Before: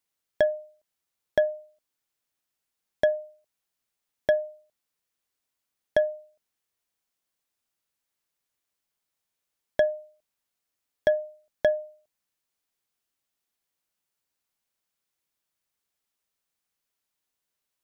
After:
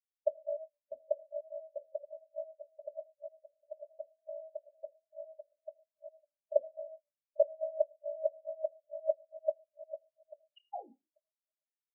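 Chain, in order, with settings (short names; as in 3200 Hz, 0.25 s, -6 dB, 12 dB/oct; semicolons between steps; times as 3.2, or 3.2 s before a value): regenerating reverse delay 0.627 s, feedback 65%, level -1.5 dB; painted sound fall, 15.77–16.29, 210–3100 Hz -17 dBFS; Chebyshev band-stop 500–2900 Hz, order 2; bell 590 Hz +3 dB 1.2 oct; compressor 6:1, threshold -37 dBFS, peak gain reduction 20 dB; transient shaper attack +12 dB, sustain -4 dB; time stretch by phase-locked vocoder 0.67×; notches 60/120/180/240/300 Hz; ring modulator 28 Hz; reverb RT60 1.0 s, pre-delay 23 ms, DRR 3 dB; spectral expander 4:1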